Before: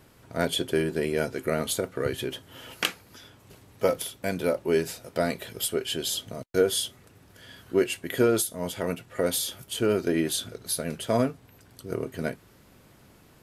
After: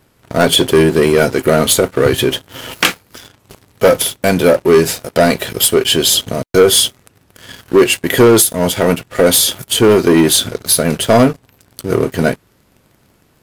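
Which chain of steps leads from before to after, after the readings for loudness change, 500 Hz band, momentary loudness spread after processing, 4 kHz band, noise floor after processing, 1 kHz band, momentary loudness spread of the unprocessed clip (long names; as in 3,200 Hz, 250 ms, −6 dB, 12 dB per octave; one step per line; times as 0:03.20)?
+16.0 dB, +15.0 dB, 7 LU, +17.0 dB, −55 dBFS, +16.5 dB, 9 LU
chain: leveller curve on the samples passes 3
level +7 dB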